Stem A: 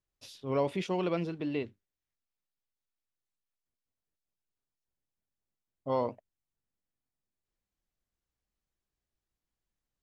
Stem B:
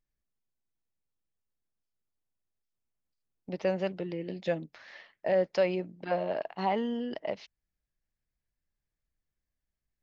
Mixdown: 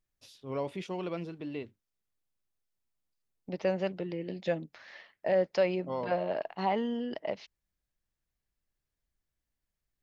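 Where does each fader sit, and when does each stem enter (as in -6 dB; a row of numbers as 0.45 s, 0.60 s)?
-5.0 dB, -0.5 dB; 0.00 s, 0.00 s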